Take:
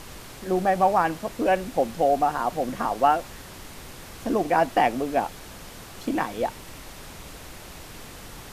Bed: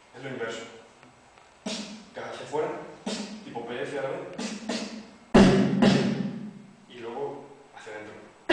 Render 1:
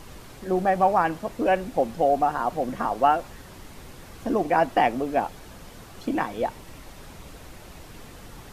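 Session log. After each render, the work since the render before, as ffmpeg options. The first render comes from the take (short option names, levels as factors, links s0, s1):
-af "afftdn=nr=6:nf=-43"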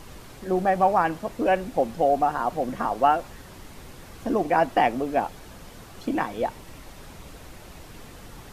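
-af anull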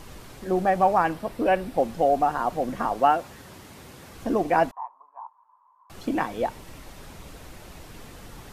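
-filter_complex "[0:a]asettb=1/sr,asplit=3[s0][s1][s2];[s0]atrim=end=1.134[s3];[s1]atrim=start=1.13:end=1.78,asetpts=PTS-STARTPTS,afade=t=in:d=0.004:c=qsin,afade=t=out:st=0.646:d=0.004:c=qsin,equalizer=f=6700:t=o:w=0.3:g=-7.5[s4];[s2]atrim=start=1.776[s5];[s3][s4]acrossfade=d=0.004:c1=hsin:c2=qsin[s6];[s6][s5]acrossfade=d=0.004:c1=qsin:c2=hsin,asettb=1/sr,asplit=3[s7][s8][s9];[s7]atrim=end=3.004[s10];[s8]atrim=start=3:end=4.15,asetpts=PTS-STARTPTS,afade=t=in:d=0.004:c=qsin,afade=t=out:st=1.146:d=0.004:c=qsin,highpass=82[s11];[s9]atrim=start=4.146[s12];[s10][s11]acrossfade=d=0.004:c1=hsin:c2=qsin[s13];[s13][s12]acrossfade=d=0.004:c1=qsin:c2=hsin,asettb=1/sr,asplit=3[s14][s15][s16];[s14]atrim=end=4.714[s17];[s15]atrim=start=4.71:end=5.9,asetpts=PTS-STARTPTS,afade=t=in:d=0.004:c=qsin,afade=t=out:st=1.186:d=0.004:c=qsin,asuperpass=centerf=1000:order=4:qfactor=6.7[s18];[s16]atrim=start=5.896[s19];[s17][s18]acrossfade=d=0.004:c1=hsin:c2=qsin[s20];[s20][s19]acrossfade=d=0.004:c1=qsin:c2=hsin"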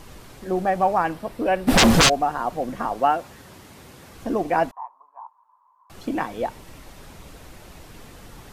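-filter_complex "[0:a]asplit=3[s0][s1][s2];[s0]afade=t=out:st=1.67:d=0.02[s3];[s1]aeval=exprs='0.299*sin(PI/2*10*val(0)/0.299)':c=same,afade=t=in:st=1.67:d=0.02,afade=t=out:st=2.08:d=0.02[s4];[s2]afade=t=in:st=2.08:d=0.02[s5];[s3][s4][s5]amix=inputs=3:normalize=0"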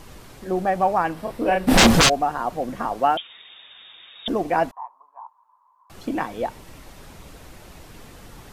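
-filter_complex "[0:a]asettb=1/sr,asplit=3[s0][s1][s2];[s0]atrim=end=1.144[s3];[s1]atrim=start=1.14:end=1.87,asetpts=PTS-STARTPTS,afade=t=in:d=0.004:c=qsin,afade=t=out:st=0.726:d=0.004:c=qsin,asplit=2[s4][s5];[s5]adelay=31,volume=0.708[s6];[s4][s6]amix=inputs=2:normalize=0,atrim=end_sample=32193[s7];[s2]atrim=start=1.866[s8];[s3][s7]acrossfade=d=0.004:c1=hsin:c2=qsin[s9];[s9][s8]acrossfade=d=0.004:c1=qsin:c2=hsin,asettb=1/sr,asplit=3[s10][s11][s12];[s10]atrim=end=3.174[s13];[s11]atrim=start=3.17:end=4.28,asetpts=PTS-STARTPTS,afade=t=in:d=0.004:c=qsin,afade=t=out:st=1.106:d=0.004:c=qsin,lowpass=f=3200:t=q:w=0.5098,lowpass=f=3200:t=q:w=0.6013,lowpass=f=3200:t=q:w=0.9,lowpass=f=3200:t=q:w=2.563,afreqshift=-3800[s14];[s12]atrim=start=4.276[s15];[s13][s14]acrossfade=d=0.004:c1=hsin:c2=qsin[s16];[s16][s15]acrossfade=d=0.004:c1=qsin:c2=hsin"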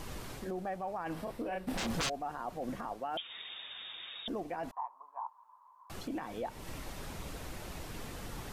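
-af "areverse,acompressor=threshold=0.0501:ratio=10,areverse,alimiter=level_in=1.88:limit=0.0631:level=0:latency=1:release=206,volume=0.531"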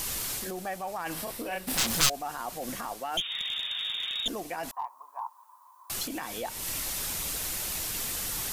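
-af "crystalizer=i=9:c=0,aeval=exprs='clip(val(0),-1,0.0447)':c=same"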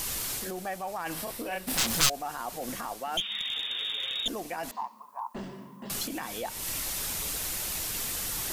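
-filter_complex "[1:a]volume=0.0668[s0];[0:a][s0]amix=inputs=2:normalize=0"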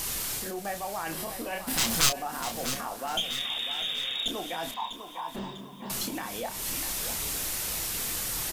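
-filter_complex "[0:a]asplit=2[s0][s1];[s1]adelay=30,volume=0.422[s2];[s0][s2]amix=inputs=2:normalize=0,asplit=2[s3][s4];[s4]aecho=0:1:648|1296|1944|2592:0.299|0.122|0.0502|0.0206[s5];[s3][s5]amix=inputs=2:normalize=0"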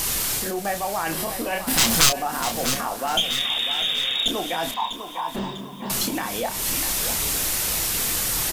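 -af "volume=2.51,alimiter=limit=0.794:level=0:latency=1"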